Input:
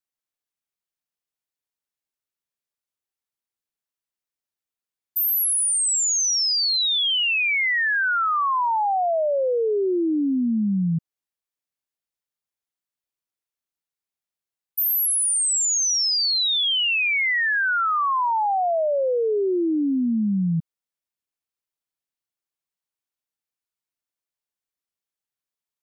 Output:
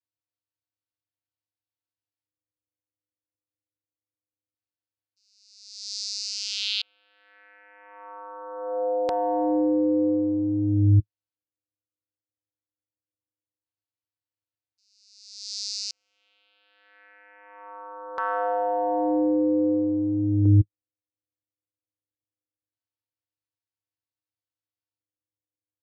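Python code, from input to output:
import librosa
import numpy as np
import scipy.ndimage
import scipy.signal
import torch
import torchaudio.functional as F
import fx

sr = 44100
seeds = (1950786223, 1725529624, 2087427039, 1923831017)

y = fx.vocoder(x, sr, bands=8, carrier='square', carrier_hz=102.0)
y = fx.filter_lfo_lowpass(y, sr, shape='square', hz=0.22, low_hz=430.0, high_hz=4500.0, q=2.3)
y = y * librosa.db_to_amplitude(-2.5)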